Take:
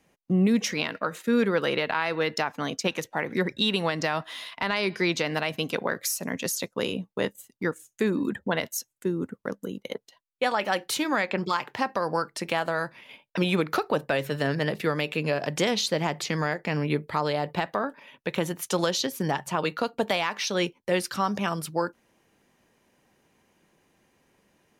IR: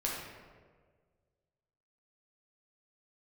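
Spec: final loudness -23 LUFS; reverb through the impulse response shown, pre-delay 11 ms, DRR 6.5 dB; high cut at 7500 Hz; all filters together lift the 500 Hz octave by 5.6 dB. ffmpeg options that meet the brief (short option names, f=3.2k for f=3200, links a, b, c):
-filter_complex "[0:a]lowpass=7.5k,equalizer=f=500:t=o:g=6.5,asplit=2[a][b];[1:a]atrim=start_sample=2205,adelay=11[c];[b][c]afir=irnorm=-1:irlink=0,volume=-11.5dB[d];[a][d]amix=inputs=2:normalize=0,volume=1dB"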